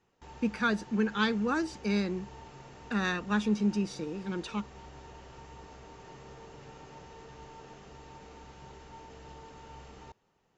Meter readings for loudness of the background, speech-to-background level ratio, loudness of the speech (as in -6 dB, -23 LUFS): -50.0 LUFS, 18.5 dB, -31.5 LUFS